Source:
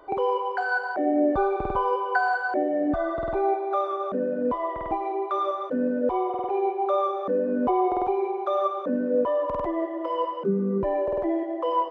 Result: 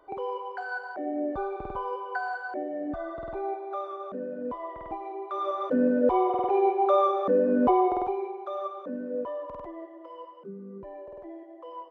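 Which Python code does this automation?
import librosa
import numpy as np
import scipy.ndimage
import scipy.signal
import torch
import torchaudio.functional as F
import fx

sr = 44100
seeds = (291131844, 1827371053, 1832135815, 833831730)

y = fx.gain(x, sr, db=fx.line((5.25, -8.5), (5.7, 2.0), (7.69, 2.0), (8.39, -9.0), (9.19, -9.0), (10.23, -17.0)))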